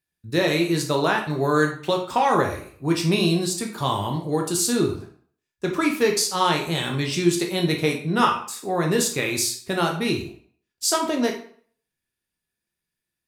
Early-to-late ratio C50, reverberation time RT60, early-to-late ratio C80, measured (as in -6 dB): 8.0 dB, 0.50 s, 12.0 dB